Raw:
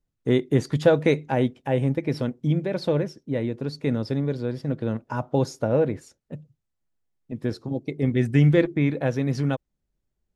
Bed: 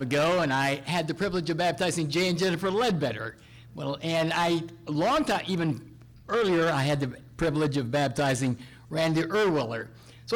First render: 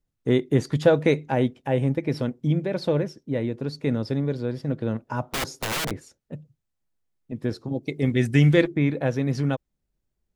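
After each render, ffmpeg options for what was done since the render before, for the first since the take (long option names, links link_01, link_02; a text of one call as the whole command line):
ffmpeg -i in.wav -filter_complex "[0:a]asettb=1/sr,asplit=3[link_01][link_02][link_03];[link_01]atrim=end=5.314[link_04];[link_02]atrim=start=5.31:end=5.91,asetpts=PTS-STARTPTS,afade=type=in:duration=0.004:curve=qsin,afade=type=out:start_time=0.596:duration=0.004:curve=qsin,aeval=exprs='(mod(12.6*val(0)+1,2)-1)/12.6':channel_layout=same[link_05];[link_03]atrim=start=5.906[link_06];[link_04][link_05]acrossfade=duration=0.004:curve1=hsin:curve2=qsin[link_07];[link_07][link_06]acrossfade=duration=0.004:curve1=qsin:curve2=hsin,asettb=1/sr,asplit=3[link_08][link_09][link_10];[link_08]atrim=end=7.834[link_11];[link_09]atrim=start=7.83:end=8.68,asetpts=PTS-STARTPTS,afade=type=in:duration=0.004:curve=qsin,afade=type=out:start_time=0.846:duration=0.004:curve=qsin,highshelf=frequency=2100:gain=8.5[link_12];[link_10]atrim=start=8.676[link_13];[link_11][link_12]acrossfade=duration=0.004:curve1=hsin:curve2=qsin[link_14];[link_14][link_13]acrossfade=duration=0.004:curve1=qsin:curve2=hsin" out.wav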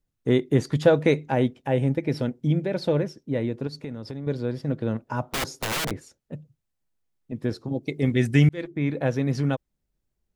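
ffmpeg -i in.wav -filter_complex "[0:a]asettb=1/sr,asplit=3[link_01][link_02][link_03];[link_01]atrim=end=1.744[link_04];[link_02]atrim=start=1.74:end=2.93,asetpts=PTS-STARTPTS,afade=type=in:duration=0.004:curve=qsin,afade=type=out:start_time=1.186:duration=0.004:curve=qsin,bandreject=frequency=1100:width=8.6[link_05];[link_03]atrim=start=2.926[link_06];[link_04][link_05]acrossfade=duration=0.004:curve1=hsin:curve2=qsin[link_07];[link_07][link_06]acrossfade=duration=0.004:curve1=qsin:curve2=hsin,asettb=1/sr,asplit=3[link_08][link_09][link_10];[link_08]atrim=end=3.674[link_11];[link_09]atrim=start=3.67:end=4.27,asetpts=PTS-STARTPTS,afade=type=in:duration=0.004:curve=qsin,afade=type=out:start_time=0.596:duration=0.004:curve=qsin,acompressor=threshold=-31dB:ratio=5:attack=3.2:release=140:knee=1:detection=peak[link_12];[link_10]atrim=start=4.266[link_13];[link_11][link_12]acrossfade=duration=0.004:curve1=hsin:curve2=qsin[link_14];[link_14][link_13]acrossfade=duration=0.004:curve1=qsin:curve2=hsin,asplit=2[link_15][link_16];[link_15]atrim=end=8.49,asetpts=PTS-STARTPTS,afade=type=out:start_time=8.486:duration=0.004:curve=hsin[link_17];[link_16]atrim=start=8.49,asetpts=PTS-STARTPTS,afade=type=in:duration=0.52[link_18];[link_17][link_18]concat=n=2:v=0:a=1" out.wav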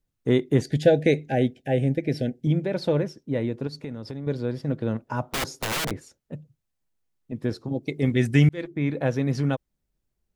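ffmpeg -i in.wav -filter_complex "[0:a]asettb=1/sr,asplit=3[link_01][link_02][link_03];[link_01]atrim=end=0.614[link_04];[link_02]atrim=start=0.61:end=2.47,asetpts=PTS-STARTPTS,afade=type=in:duration=0.004:curve=qsin,afade=type=out:start_time=1.856:duration=0.004:curve=qsin,asuperstop=centerf=1100:order=20:qfactor=1.6[link_05];[link_03]atrim=start=2.466[link_06];[link_04][link_05]acrossfade=duration=0.004:curve1=hsin:curve2=qsin[link_07];[link_07][link_06]acrossfade=duration=0.004:curve1=qsin:curve2=hsin" out.wav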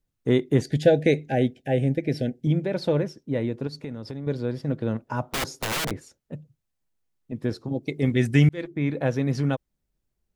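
ffmpeg -i in.wav -af anull out.wav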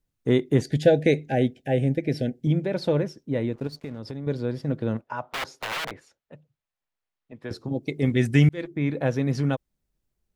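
ffmpeg -i in.wav -filter_complex "[0:a]asplit=3[link_01][link_02][link_03];[link_01]afade=type=out:start_time=3.52:duration=0.02[link_04];[link_02]aeval=exprs='sgn(val(0))*max(abs(val(0))-0.00299,0)':channel_layout=same,afade=type=in:start_time=3.52:duration=0.02,afade=type=out:start_time=3.98:duration=0.02[link_05];[link_03]afade=type=in:start_time=3.98:duration=0.02[link_06];[link_04][link_05][link_06]amix=inputs=3:normalize=0,asettb=1/sr,asplit=3[link_07][link_08][link_09];[link_07]atrim=end=5.014[link_10];[link_08]atrim=start=5.01:end=7.51,asetpts=PTS-STARTPTS,afade=type=in:duration=0.004:curve=qsin,afade=type=out:start_time=2.496:duration=0.004:curve=qsin,acrossover=split=540 4100:gain=0.224 1 0.251[link_11][link_12][link_13];[link_11][link_12][link_13]amix=inputs=3:normalize=0[link_14];[link_09]atrim=start=7.506[link_15];[link_10][link_14]acrossfade=duration=0.004:curve1=hsin:curve2=qsin[link_16];[link_16][link_15]acrossfade=duration=0.004:curve1=qsin:curve2=hsin" out.wav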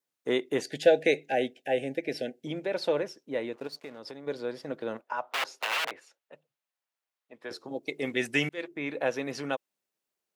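ffmpeg -i in.wav -af "highpass=480,adynamicequalizer=threshold=0.00251:dfrequency=2700:dqfactor=7.4:tfrequency=2700:tqfactor=7.4:attack=5:release=100:ratio=0.375:range=3:mode=boostabove:tftype=bell" out.wav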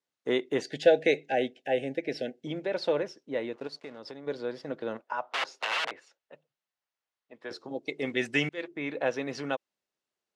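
ffmpeg -i in.wav -af "lowpass=6200,bandreject=frequency=2400:width=27" out.wav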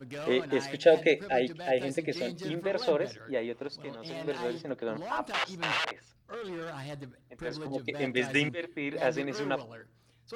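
ffmpeg -i in.wav -i bed.wav -filter_complex "[1:a]volume=-15dB[link_01];[0:a][link_01]amix=inputs=2:normalize=0" out.wav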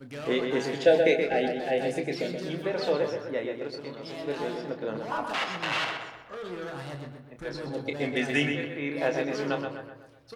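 ffmpeg -i in.wav -filter_complex "[0:a]asplit=2[link_01][link_02];[link_02]adelay=28,volume=-7.5dB[link_03];[link_01][link_03]amix=inputs=2:normalize=0,asplit=2[link_04][link_05];[link_05]adelay=126,lowpass=frequency=3200:poles=1,volume=-5dB,asplit=2[link_06][link_07];[link_07]adelay=126,lowpass=frequency=3200:poles=1,volume=0.5,asplit=2[link_08][link_09];[link_09]adelay=126,lowpass=frequency=3200:poles=1,volume=0.5,asplit=2[link_10][link_11];[link_11]adelay=126,lowpass=frequency=3200:poles=1,volume=0.5,asplit=2[link_12][link_13];[link_13]adelay=126,lowpass=frequency=3200:poles=1,volume=0.5,asplit=2[link_14][link_15];[link_15]adelay=126,lowpass=frequency=3200:poles=1,volume=0.5[link_16];[link_06][link_08][link_10][link_12][link_14][link_16]amix=inputs=6:normalize=0[link_17];[link_04][link_17]amix=inputs=2:normalize=0" out.wav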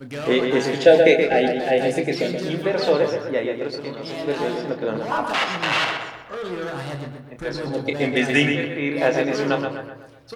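ffmpeg -i in.wav -af "volume=8dB,alimiter=limit=-2dB:level=0:latency=1" out.wav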